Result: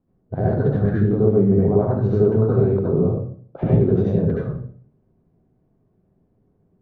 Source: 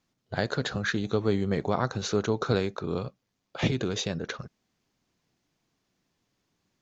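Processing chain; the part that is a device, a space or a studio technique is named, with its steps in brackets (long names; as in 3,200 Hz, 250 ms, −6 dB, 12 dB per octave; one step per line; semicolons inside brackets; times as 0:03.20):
television next door (downward compressor 4 to 1, threshold −27 dBFS, peak gain reduction 7.5 dB; low-pass filter 480 Hz 12 dB per octave; convolution reverb RT60 0.50 s, pre-delay 66 ms, DRR −6 dB)
level +9 dB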